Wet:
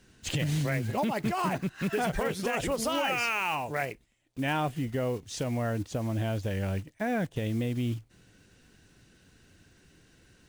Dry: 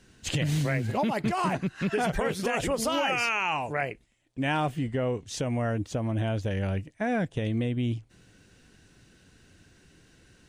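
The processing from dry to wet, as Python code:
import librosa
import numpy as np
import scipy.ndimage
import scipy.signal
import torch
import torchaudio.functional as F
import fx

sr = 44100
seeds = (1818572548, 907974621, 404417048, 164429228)

y = fx.block_float(x, sr, bits=5)
y = F.gain(torch.from_numpy(y), -2.0).numpy()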